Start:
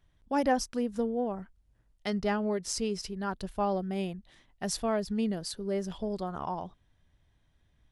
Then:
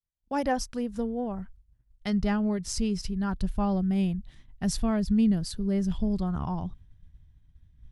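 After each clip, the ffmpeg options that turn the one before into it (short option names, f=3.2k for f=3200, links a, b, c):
-af "asubboost=boost=8.5:cutoff=170,agate=range=-33dB:threshold=-45dB:ratio=3:detection=peak"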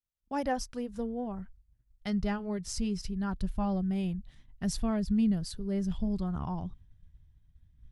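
-af "flanger=delay=0:depth=2.4:regen=-73:speed=0.62:shape=triangular"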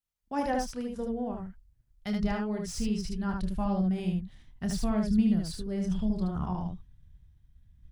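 -filter_complex "[0:a]acrossover=split=570|2600[a][b][c];[c]asoftclip=type=hard:threshold=-38dB[d];[a][b][d]amix=inputs=3:normalize=0,aecho=1:1:28|75:0.398|0.708"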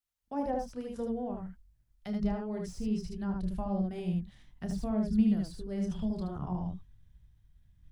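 -filter_complex "[0:a]acrossover=split=410|790[a][b][c];[a]flanger=delay=17.5:depth=4.9:speed=0.98[d];[c]acompressor=threshold=-51dB:ratio=10[e];[d][b][e]amix=inputs=3:normalize=0"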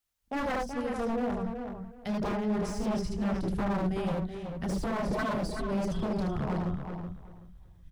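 -filter_complex "[0:a]aeval=exprs='0.0251*(abs(mod(val(0)/0.0251+3,4)-2)-1)':c=same,asplit=2[a][b];[b]adelay=377,lowpass=f=3.3k:p=1,volume=-6.5dB,asplit=2[c][d];[d]adelay=377,lowpass=f=3.3k:p=1,volume=0.21,asplit=2[e][f];[f]adelay=377,lowpass=f=3.3k:p=1,volume=0.21[g];[a][c][e][g]amix=inputs=4:normalize=0,volume=6dB"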